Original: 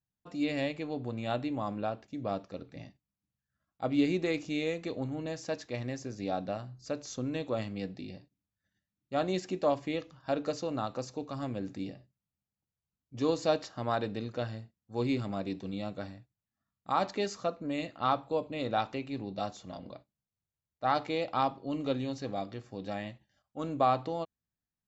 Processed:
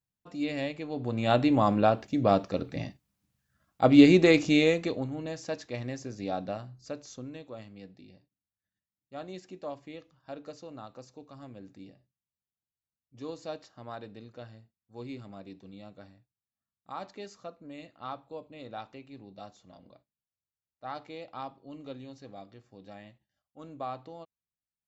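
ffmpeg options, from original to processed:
-af "volume=3.55,afade=t=in:st=0.89:d=0.64:silence=0.266073,afade=t=out:st=4.53:d=0.54:silence=0.298538,afade=t=out:st=6.51:d=0.93:silence=0.281838"

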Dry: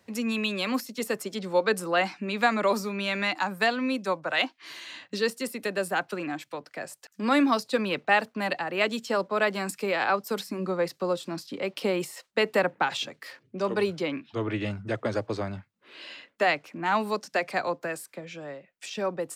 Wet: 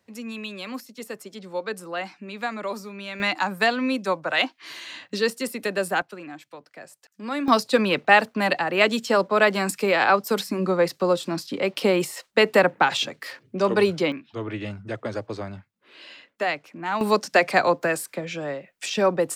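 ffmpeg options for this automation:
-af "asetnsamples=n=441:p=0,asendcmd='3.2 volume volume 3.5dB;6.02 volume volume -6dB;7.48 volume volume 6.5dB;14.12 volume volume -1.5dB;17.01 volume volume 9dB',volume=0.501"

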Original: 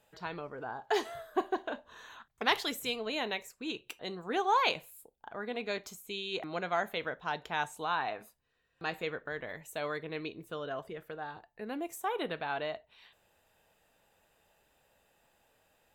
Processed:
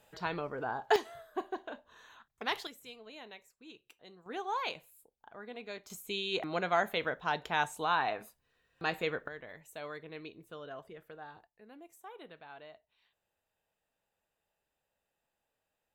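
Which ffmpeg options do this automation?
-af "asetnsamples=n=441:p=0,asendcmd='0.96 volume volume -6dB;2.67 volume volume -15dB;4.26 volume volume -8dB;5.9 volume volume 2.5dB;9.28 volume volume -7dB;11.47 volume volume -15.5dB',volume=1.58"

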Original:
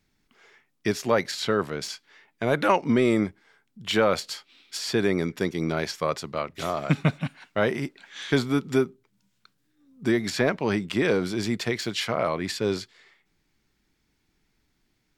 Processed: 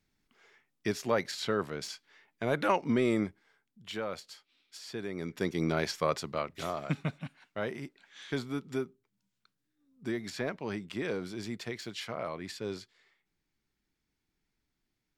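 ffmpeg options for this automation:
-af "volume=1.88,afade=t=out:st=3.24:d=0.71:silence=0.375837,afade=t=in:st=5.13:d=0.46:silence=0.251189,afade=t=out:st=6.21:d=0.84:silence=0.375837"

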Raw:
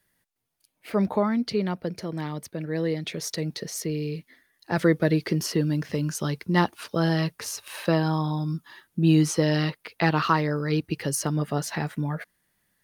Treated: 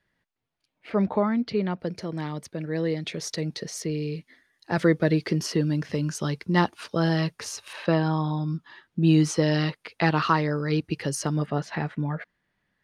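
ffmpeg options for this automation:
-af "asetnsamples=n=441:p=0,asendcmd='1.8 lowpass f 8000;7.73 lowpass f 4100;9.02 lowpass f 7800;11.46 lowpass f 3200',lowpass=3600"

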